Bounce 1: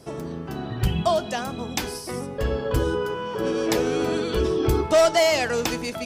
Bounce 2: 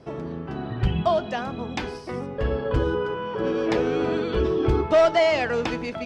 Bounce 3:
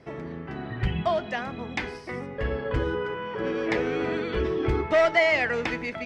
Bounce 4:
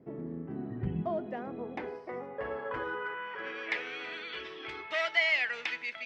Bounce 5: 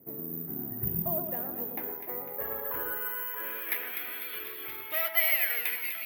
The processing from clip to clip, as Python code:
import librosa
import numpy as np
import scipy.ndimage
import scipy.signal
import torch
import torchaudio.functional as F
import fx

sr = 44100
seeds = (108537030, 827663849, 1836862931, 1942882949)

y1 = scipy.signal.sosfilt(scipy.signal.butter(2, 3000.0, 'lowpass', fs=sr, output='sos'), x)
y2 = fx.peak_eq(y1, sr, hz=2000.0, db=11.5, octaves=0.53)
y2 = y2 * 10.0 ** (-4.0 / 20.0)
y3 = fx.filter_sweep_bandpass(y2, sr, from_hz=250.0, to_hz=3100.0, start_s=0.98, end_s=3.97, q=1.3)
y4 = (np.kron(y3[::3], np.eye(3)[0]) * 3)[:len(y3)]
y4 = fx.echo_split(y4, sr, split_hz=1900.0, low_ms=114, high_ms=250, feedback_pct=52, wet_db=-6.5)
y4 = y4 * 10.0 ** (-3.5 / 20.0)